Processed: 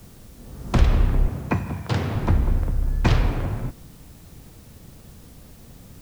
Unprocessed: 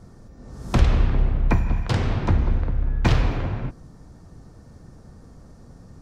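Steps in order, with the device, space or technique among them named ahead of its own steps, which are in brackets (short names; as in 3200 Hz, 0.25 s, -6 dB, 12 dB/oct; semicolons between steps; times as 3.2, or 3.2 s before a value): plain cassette with noise reduction switched in (mismatched tape noise reduction decoder only; wow and flutter; white noise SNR 32 dB); 1.28–2.15 HPF 89 Hz 24 dB/oct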